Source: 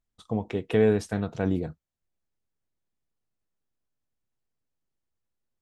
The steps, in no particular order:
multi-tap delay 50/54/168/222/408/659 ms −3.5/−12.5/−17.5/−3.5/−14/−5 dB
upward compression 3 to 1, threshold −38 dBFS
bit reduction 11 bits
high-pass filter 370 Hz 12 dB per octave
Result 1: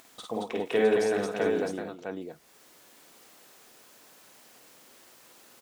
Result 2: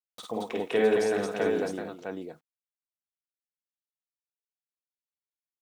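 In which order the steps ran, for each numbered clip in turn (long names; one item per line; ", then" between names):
high-pass filter, then upward compression, then bit reduction, then multi-tap delay
bit reduction, then high-pass filter, then upward compression, then multi-tap delay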